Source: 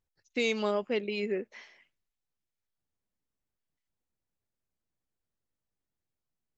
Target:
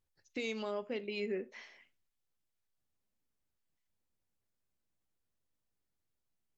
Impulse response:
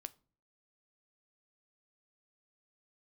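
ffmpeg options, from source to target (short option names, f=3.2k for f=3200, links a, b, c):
-filter_complex "[0:a]alimiter=level_in=4dB:limit=-24dB:level=0:latency=1:release=404,volume=-4dB[a];[1:a]atrim=start_sample=2205,atrim=end_sample=3969,asetrate=38808,aresample=44100[b];[a][b]afir=irnorm=-1:irlink=0,volume=4dB"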